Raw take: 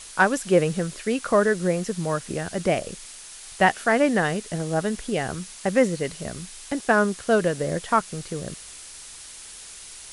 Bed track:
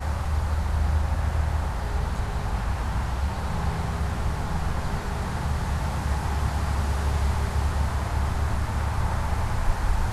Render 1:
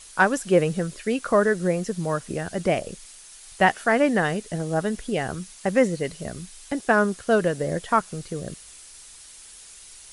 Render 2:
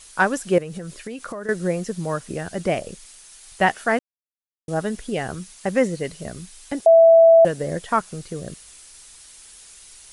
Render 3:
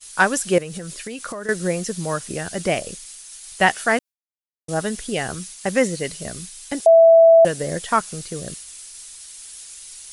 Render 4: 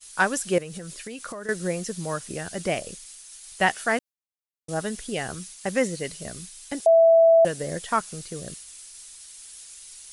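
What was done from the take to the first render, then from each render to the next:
broadband denoise 6 dB, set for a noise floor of −42 dBFS
0:00.58–0:01.49: downward compressor 12 to 1, threshold −28 dBFS; 0:03.99–0:04.68: silence; 0:06.86–0:07.45: beep over 660 Hz −7.5 dBFS
high-shelf EQ 2,400 Hz +10 dB; downward expander −33 dBFS
level −5 dB

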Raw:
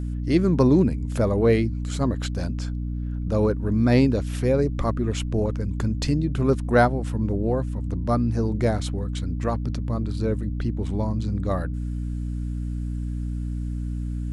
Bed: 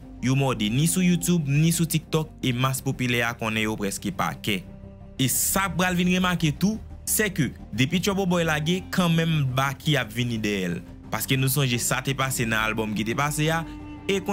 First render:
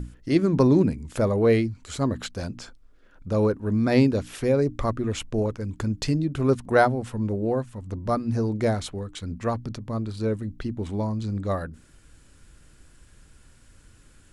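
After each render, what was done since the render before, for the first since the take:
mains-hum notches 60/120/180/240/300 Hz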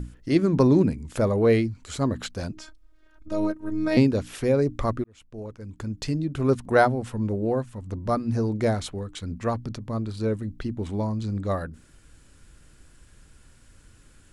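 0:02.52–0:03.97: phases set to zero 313 Hz
0:05.04–0:06.57: fade in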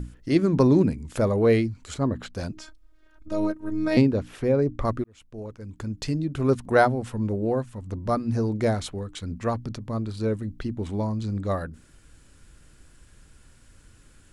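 0:01.94–0:02.34: high-shelf EQ 2,900 Hz −11.5 dB
0:04.01–0:04.85: high-shelf EQ 3,100 Hz −11.5 dB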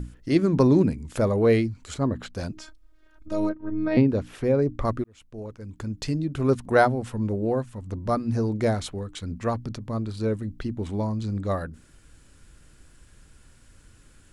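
0:03.49–0:04.09: high-frequency loss of the air 290 metres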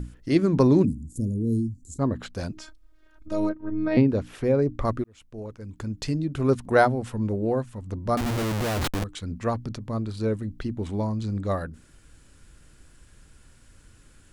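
0:00.85–0:01.99: elliptic band-stop filter 280–7,200 Hz, stop band 80 dB
0:08.17–0:09.04: comparator with hysteresis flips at −31 dBFS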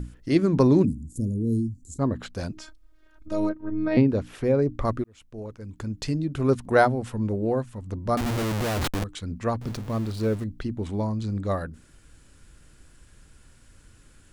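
0:09.61–0:10.44: converter with a step at zero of −36 dBFS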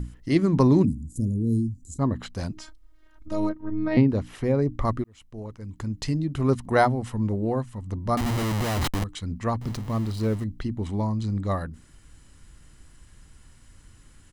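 comb filter 1 ms, depth 31%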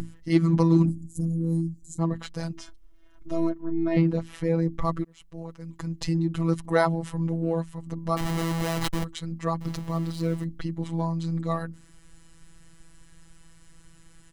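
phases set to zero 165 Hz
in parallel at −11.5 dB: hard clipping −22.5 dBFS, distortion −8 dB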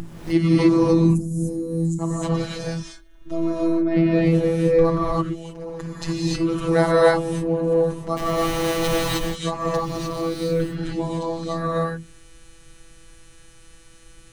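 reverb whose tail is shaped and stops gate 330 ms rising, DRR −7 dB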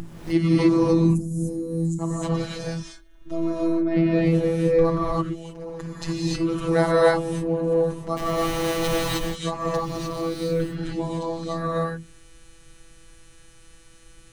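level −2 dB

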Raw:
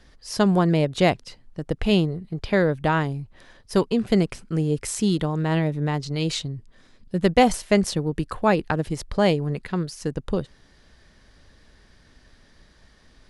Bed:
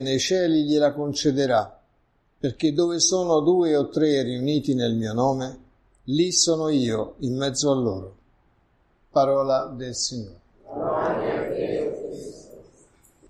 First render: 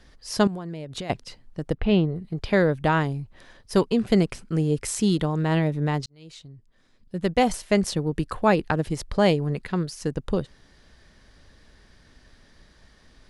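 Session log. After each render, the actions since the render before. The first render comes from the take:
0:00.47–0:01.10: downward compressor 20 to 1, threshold −29 dBFS
0:01.74–0:02.16: high-frequency loss of the air 290 metres
0:06.06–0:08.20: fade in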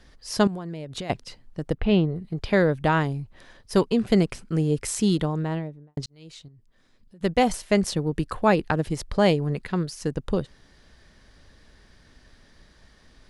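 0:05.13–0:05.97: fade out and dull
0:06.48–0:07.21: downward compressor 4 to 1, threshold −50 dBFS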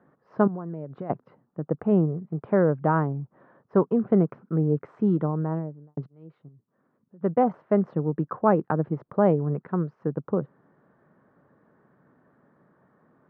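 Chebyshev band-pass filter 140–1,300 Hz, order 3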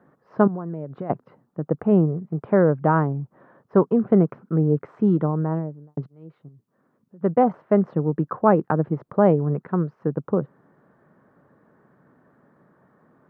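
level +3.5 dB

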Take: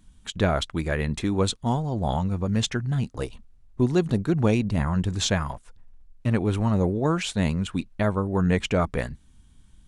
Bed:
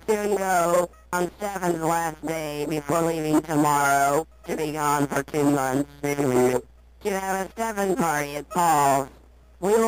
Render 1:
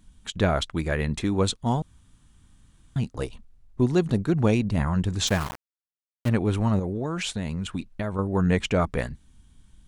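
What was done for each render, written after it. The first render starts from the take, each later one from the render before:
0:01.82–0:02.96: fill with room tone
0:05.27–0:06.29: centre clipping without the shift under −28.5 dBFS
0:06.79–0:08.19: downward compressor, threshold −24 dBFS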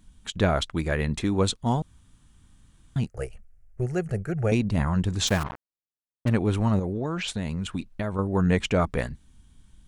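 0:03.06–0:04.52: phaser with its sweep stopped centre 1,000 Hz, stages 6
0:05.43–0:07.28: low-pass that shuts in the quiet parts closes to 430 Hz, open at −22 dBFS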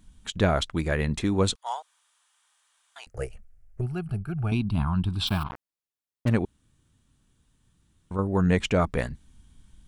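0:01.55–0:03.07: inverse Chebyshev high-pass filter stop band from 220 Hz, stop band 60 dB
0:03.81–0:05.51: phaser with its sweep stopped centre 1,900 Hz, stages 6
0:06.45–0:08.11: fill with room tone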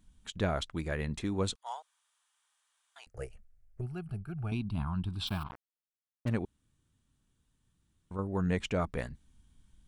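level −8.5 dB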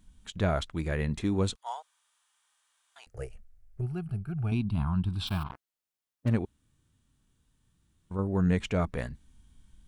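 harmonic and percussive parts rebalanced harmonic +6 dB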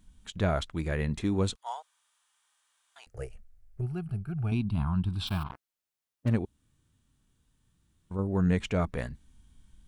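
0:06.36–0:08.31: dynamic equaliser 1,700 Hz, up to −5 dB, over −53 dBFS, Q 0.85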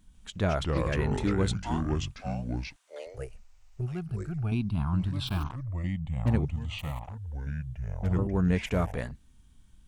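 delay with pitch and tempo change per echo 147 ms, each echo −4 semitones, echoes 2

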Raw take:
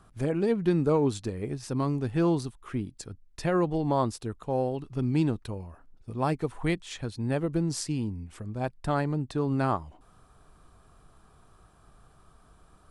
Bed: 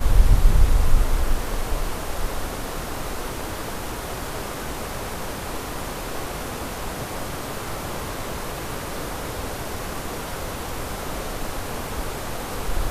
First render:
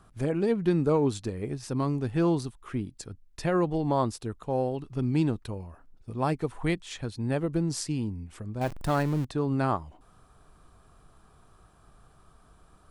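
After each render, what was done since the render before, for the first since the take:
0:08.61–0:09.25: converter with a step at zero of −33.5 dBFS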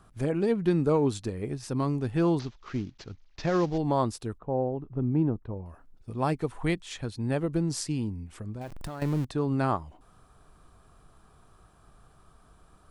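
0:02.39–0:03.78: variable-slope delta modulation 32 kbit/s
0:04.38–0:05.66: low-pass filter 1,000 Hz
0:08.54–0:09.02: downward compressor 12 to 1, threshold −33 dBFS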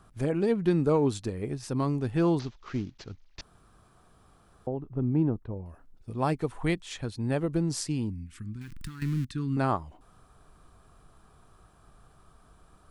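0:03.41–0:04.67: fill with room tone
0:05.48–0:06.14: dynamic equaliser 1,100 Hz, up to −4 dB, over −58 dBFS, Q 1.1
0:08.10–0:09.57: Chebyshev band-stop filter 250–1,600 Hz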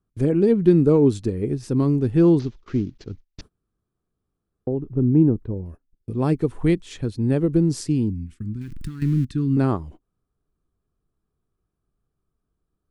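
noise gate −46 dBFS, range −27 dB
low shelf with overshoot 530 Hz +8 dB, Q 1.5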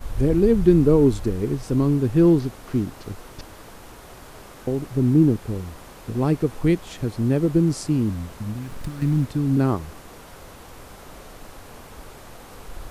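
mix in bed −12.5 dB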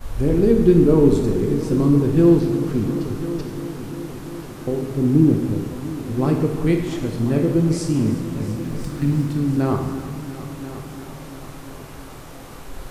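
echo machine with several playback heads 346 ms, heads all three, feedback 58%, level −17.5 dB
dense smooth reverb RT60 1.3 s, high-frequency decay 0.9×, DRR 2 dB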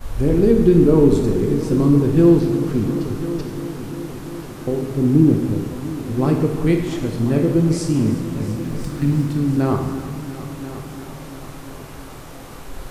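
level +1.5 dB
brickwall limiter −3 dBFS, peak gain reduction 2.5 dB

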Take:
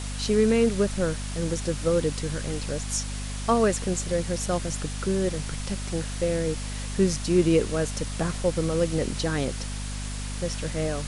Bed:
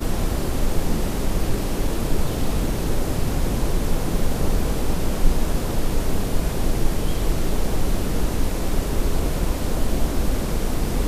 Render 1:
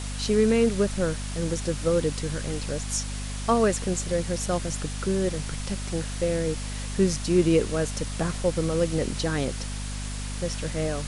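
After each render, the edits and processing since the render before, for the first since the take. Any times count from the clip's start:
no processing that can be heard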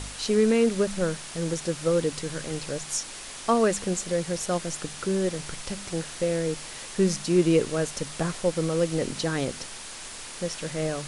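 hum removal 50 Hz, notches 5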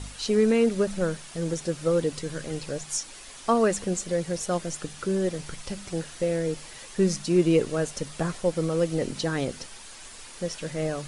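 broadband denoise 7 dB, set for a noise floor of −40 dBFS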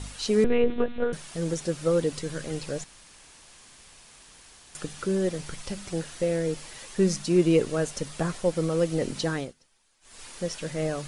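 0:00.44–0:01.13: one-pitch LPC vocoder at 8 kHz 240 Hz
0:02.84–0:04.75: fill with room tone
0:09.31–0:10.24: duck −23.5 dB, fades 0.23 s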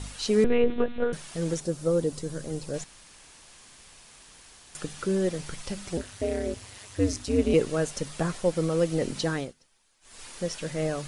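0:01.60–0:02.74: parametric band 2,300 Hz −9.5 dB 2.1 octaves
0:05.97–0:07.54: ring modulation 100 Hz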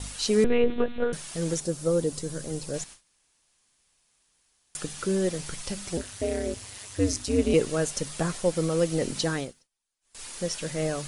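high-shelf EQ 5,000 Hz +7.5 dB
noise gate with hold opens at −35 dBFS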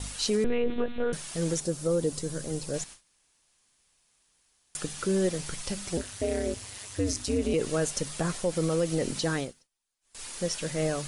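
brickwall limiter −18 dBFS, peak gain reduction 7 dB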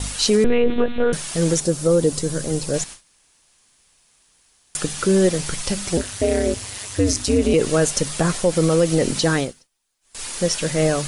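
level +10 dB

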